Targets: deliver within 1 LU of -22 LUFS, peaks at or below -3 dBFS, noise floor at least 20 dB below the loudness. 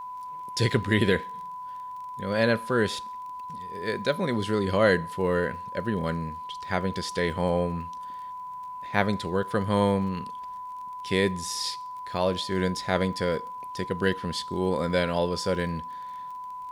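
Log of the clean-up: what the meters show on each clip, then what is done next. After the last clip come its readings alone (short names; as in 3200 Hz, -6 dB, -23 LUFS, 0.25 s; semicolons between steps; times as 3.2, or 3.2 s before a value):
ticks 26/s; steady tone 1000 Hz; tone level -35 dBFS; loudness -28.0 LUFS; peak -6.0 dBFS; loudness target -22.0 LUFS
-> de-click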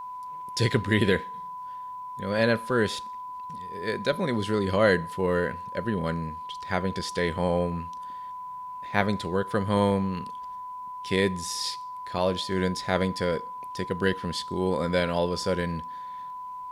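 ticks 0.12/s; steady tone 1000 Hz; tone level -35 dBFS
-> notch 1000 Hz, Q 30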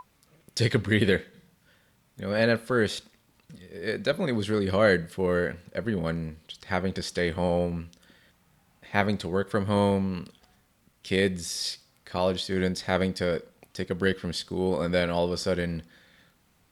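steady tone none; loudness -27.5 LUFS; peak -6.0 dBFS; loudness target -22.0 LUFS
-> gain +5.5 dB; limiter -3 dBFS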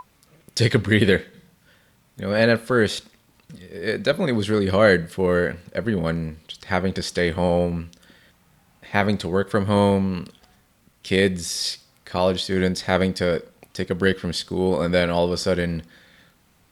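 loudness -22.0 LUFS; peak -3.0 dBFS; noise floor -60 dBFS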